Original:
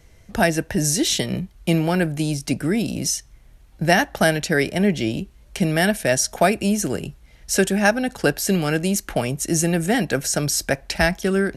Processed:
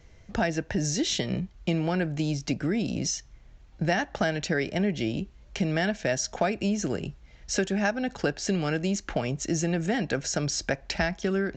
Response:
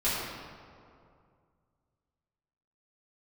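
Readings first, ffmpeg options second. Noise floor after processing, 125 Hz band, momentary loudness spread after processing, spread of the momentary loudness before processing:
−53 dBFS, −6.0 dB, 5 LU, 7 LU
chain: -af "highshelf=frequency=6000:gain=-5,acompressor=threshold=-22dB:ratio=2.5,aresample=16000,aresample=44100,volume=-2.5dB"

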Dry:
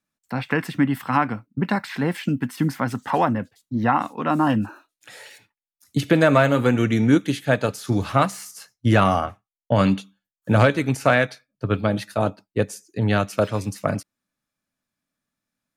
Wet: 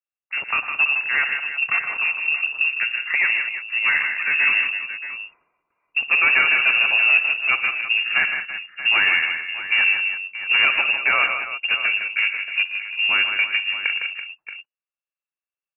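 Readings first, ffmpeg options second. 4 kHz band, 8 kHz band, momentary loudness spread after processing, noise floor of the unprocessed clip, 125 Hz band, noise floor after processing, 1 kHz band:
+12.0 dB, below −40 dB, 11 LU, below −85 dBFS, below −30 dB, below −85 dBFS, −7.0 dB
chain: -filter_complex "[0:a]afwtdn=0.0316,asoftclip=type=hard:threshold=-12dB,acrusher=bits=5:mode=log:mix=0:aa=0.000001,asplit=2[link_01][link_02];[link_02]aecho=0:1:59|117|157|199|333|628:0.141|0.211|0.447|0.141|0.237|0.237[link_03];[link_01][link_03]amix=inputs=2:normalize=0,lowpass=frequency=2500:width_type=q:width=0.5098,lowpass=frequency=2500:width_type=q:width=0.6013,lowpass=frequency=2500:width_type=q:width=0.9,lowpass=frequency=2500:width_type=q:width=2.563,afreqshift=-2900"

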